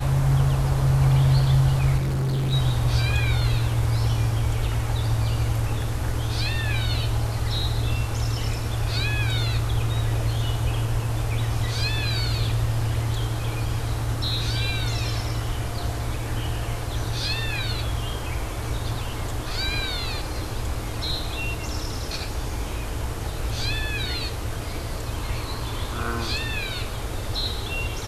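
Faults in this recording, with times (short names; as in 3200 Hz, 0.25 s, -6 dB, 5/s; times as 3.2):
1.97–2.54 clipped -21.5 dBFS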